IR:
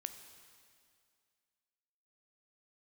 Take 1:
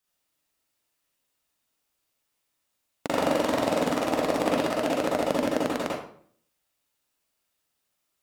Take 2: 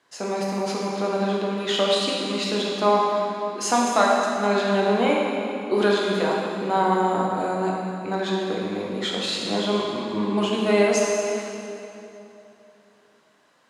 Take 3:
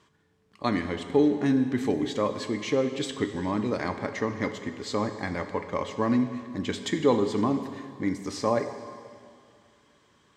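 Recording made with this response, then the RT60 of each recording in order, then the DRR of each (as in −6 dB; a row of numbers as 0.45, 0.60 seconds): 3; 0.55, 3.0, 2.2 seconds; −4.5, −3.5, 8.0 decibels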